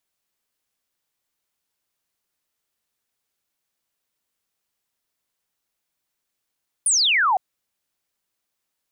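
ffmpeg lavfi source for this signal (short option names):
-f lavfi -i "aevalsrc='0.168*clip(t/0.002,0,1)*clip((0.51-t)/0.002,0,1)*sin(2*PI*10000*0.51/log(710/10000)*(exp(log(710/10000)*t/0.51)-1))':d=0.51:s=44100"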